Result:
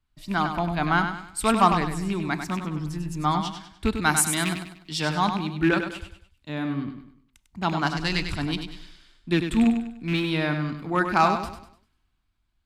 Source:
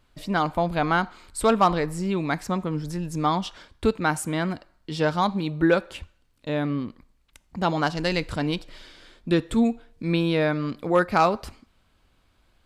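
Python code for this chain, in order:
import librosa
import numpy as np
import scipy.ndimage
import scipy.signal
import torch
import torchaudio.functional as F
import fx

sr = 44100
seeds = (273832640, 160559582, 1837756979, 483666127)

y = fx.rattle_buzz(x, sr, strikes_db=-26.0, level_db=-21.0)
y = fx.high_shelf(y, sr, hz=2800.0, db=8.5, at=(3.93, 5.02))
y = fx.vibrato(y, sr, rate_hz=5.3, depth_cents=17.0)
y = fx.peak_eq(y, sr, hz=510.0, db=-13.5, octaves=0.53)
y = fx.echo_feedback(y, sr, ms=99, feedback_pct=45, wet_db=-7)
y = fx.band_widen(y, sr, depth_pct=40)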